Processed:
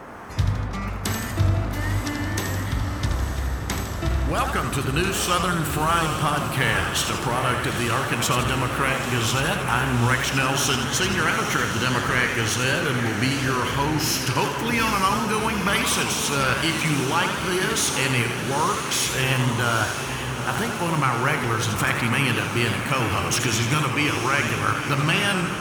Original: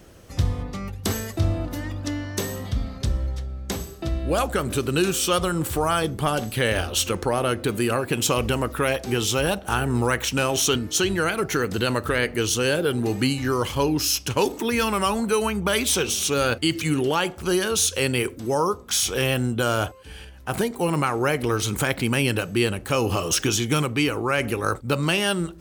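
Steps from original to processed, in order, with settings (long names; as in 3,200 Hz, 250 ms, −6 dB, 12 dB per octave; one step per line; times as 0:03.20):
camcorder AGC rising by 8.8 dB per second
octave-band graphic EQ 125/500/1,000/2,000 Hz +4/−6/+5/+6 dB
noise in a band 110–1,500 Hz −37 dBFS
feedback delay with all-pass diffusion 885 ms, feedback 62%, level −8 dB
feedback echo with a swinging delay time 81 ms, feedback 58%, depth 135 cents, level −7.5 dB
level −3 dB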